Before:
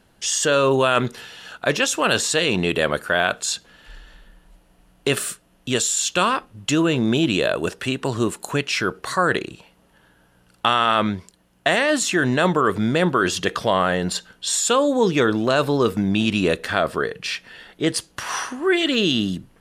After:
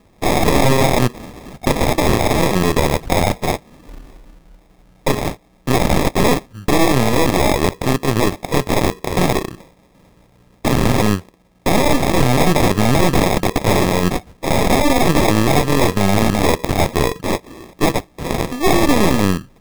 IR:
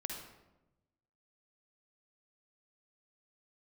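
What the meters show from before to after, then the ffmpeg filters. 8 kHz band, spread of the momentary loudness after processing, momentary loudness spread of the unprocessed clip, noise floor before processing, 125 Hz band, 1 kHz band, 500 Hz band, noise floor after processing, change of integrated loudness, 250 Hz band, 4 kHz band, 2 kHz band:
−1.0 dB, 9 LU, 9 LU, −58 dBFS, +9.5 dB, +4.5 dB, +3.5 dB, −53 dBFS, +4.0 dB, +5.5 dB, 0.0 dB, 0.0 dB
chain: -af "acrusher=samples=30:mix=1:aa=0.000001,aeval=exprs='0.708*(cos(1*acos(clip(val(0)/0.708,-1,1)))-cos(1*PI/2))+0.251*(cos(6*acos(clip(val(0)/0.708,-1,1)))-cos(6*PI/2))':channel_layout=same,aeval=exprs='0.335*(abs(mod(val(0)/0.335+3,4)-2)-1)':channel_layout=same,volume=6dB"

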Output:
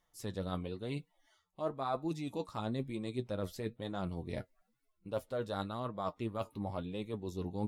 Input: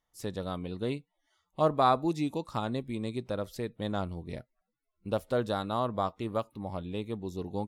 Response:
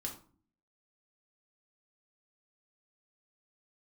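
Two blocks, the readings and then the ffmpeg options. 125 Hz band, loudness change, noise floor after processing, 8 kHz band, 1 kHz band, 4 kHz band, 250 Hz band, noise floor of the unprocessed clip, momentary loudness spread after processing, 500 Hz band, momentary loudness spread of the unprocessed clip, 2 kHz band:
−4.0 dB, −7.0 dB, −79 dBFS, −3.5 dB, −10.0 dB, −6.5 dB, −5.0 dB, −84 dBFS, 5 LU, −7.0 dB, 12 LU, −6.5 dB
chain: -af "areverse,acompressor=threshold=-40dB:ratio=6,areverse,flanger=delay=5.3:depth=6.1:regen=43:speed=1:shape=triangular,volume=9dB"

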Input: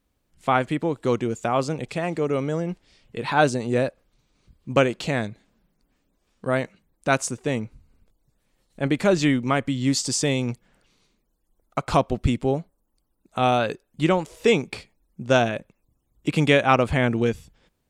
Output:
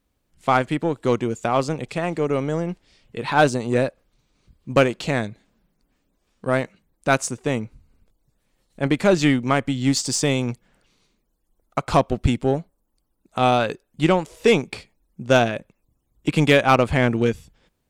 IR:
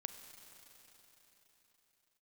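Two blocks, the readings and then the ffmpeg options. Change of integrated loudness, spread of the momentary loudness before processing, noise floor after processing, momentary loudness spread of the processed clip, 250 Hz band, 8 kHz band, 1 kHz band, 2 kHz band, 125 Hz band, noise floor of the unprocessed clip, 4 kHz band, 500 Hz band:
+2.0 dB, 13 LU, −72 dBFS, 14 LU, +2.0 dB, +1.5 dB, +2.0 dB, +2.0 dB, +2.0 dB, −73 dBFS, +2.0 dB, +2.0 dB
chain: -af "aeval=exprs='0.668*(cos(1*acos(clip(val(0)/0.668,-1,1)))-cos(1*PI/2))+0.133*(cos(2*acos(clip(val(0)/0.668,-1,1)))-cos(2*PI/2))+0.0473*(cos(3*acos(clip(val(0)/0.668,-1,1)))-cos(3*PI/2))+0.0531*(cos(4*acos(clip(val(0)/0.668,-1,1)))-cos(4*PI/2))+0.0299*(cos(7*acos(clip(val(0)/0.668,-1,1)))-cos(7*PI/2))':channel_layout=same,asoftclip=type=tanh:threshold=-13dB,volume=7dB"

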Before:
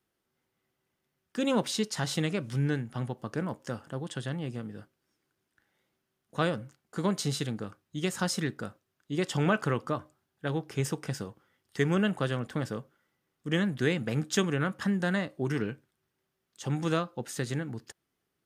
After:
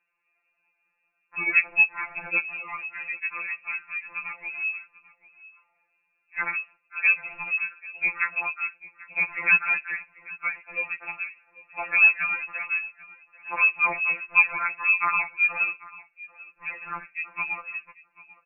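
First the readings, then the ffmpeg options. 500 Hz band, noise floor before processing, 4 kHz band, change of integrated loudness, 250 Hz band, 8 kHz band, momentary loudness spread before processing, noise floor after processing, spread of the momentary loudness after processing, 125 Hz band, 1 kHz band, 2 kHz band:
−14.0 dB, −82 dBFS, below −20 dB, +7.5 dB, below −20 dB, below −40 dB, 12 LU, −74 dBFS, 16 LU, below −20 dB, +5.0 dB, +15.5 dB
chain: -af "aecho=1:1:791:0.0944,lowpass=frequency=2400:width_type=q:width=0.5098,lowpass=frequency=2400:width_type=q:width=0.6013,lowpass=frequency=2400:width_type=q:width=0.9,lowpass=frequency=2400:width_type=q:width=2.563,afreqshift=-2800,afftfilt=real='re*2.83*eq(mod(b,8),0)':imag='im*2.83*eq(mod(b,8),0)':win_size=2048:overlap=0.75,volume=7.5dB"

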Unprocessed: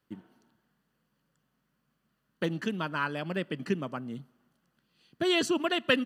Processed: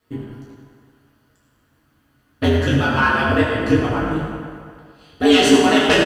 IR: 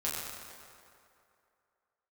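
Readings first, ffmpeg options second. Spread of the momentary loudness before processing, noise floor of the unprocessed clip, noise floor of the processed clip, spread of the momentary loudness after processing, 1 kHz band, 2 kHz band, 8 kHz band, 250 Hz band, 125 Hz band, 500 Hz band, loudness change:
16 LU, −78 dBFS, −62 dBFS, 20 LU, +15.5 dB, +14.0 dB, +15.0 dB, +15.0 dB, +17.0 dB, +14.0 dB, +14.0 dB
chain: -filter_complex "[0:a]aeval=exprs='0.355*sin(PI/2*2.24*val(0)/0.355)':channel_layout=same,aeval=exprs='val(0)*sin(2*PI*79*n/s)':channel_layout=same,asplit=2[link_01][link_02];[link_02]adelay=15,volume=-12dB[link_03];[link_01][link_03]amix=inputs=2:normalize=0[link_04];[1:a]atrim=start_sample=2205,asetrate=52920,aresample=44100[link_05];[link_04][link_05]afir=irnorm=-1:irlink=0,volume=3dB"

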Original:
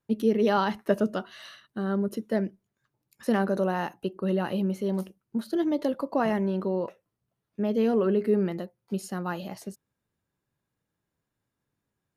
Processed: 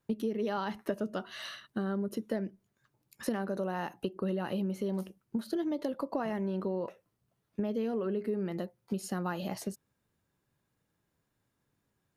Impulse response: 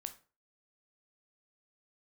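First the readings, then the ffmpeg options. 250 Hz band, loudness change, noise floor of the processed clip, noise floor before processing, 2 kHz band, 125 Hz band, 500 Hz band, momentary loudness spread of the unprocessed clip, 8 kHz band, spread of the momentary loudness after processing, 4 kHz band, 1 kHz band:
−6.5 dB, −7.5 dB, −81 dBFS, −84 dBFS, −7.0 dB, −6.0 dB, −7.5 dB, 12 LU, can't be measured, 7 LU, −4.0 dB, −7.5 dB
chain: -af "acompressor=threshold=-34dB:ratio=6,volume=3.5dB"

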